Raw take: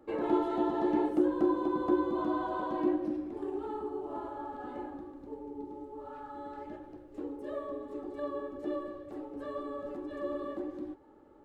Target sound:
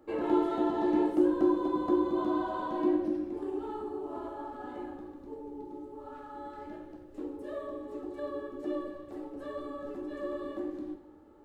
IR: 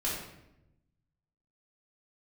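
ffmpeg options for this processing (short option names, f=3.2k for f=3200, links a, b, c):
-filter_complex "[0:a]asplit=2[a][b];[1:a]atrim=start_sample=2205,highshelf=f=2.8k:g=11[c];[b][c]afir=irnorm=-1:irlink=0,volume=-11.5dB[d];[a][d]amix=inputs=2:normalize=0,volume=-2.5dB"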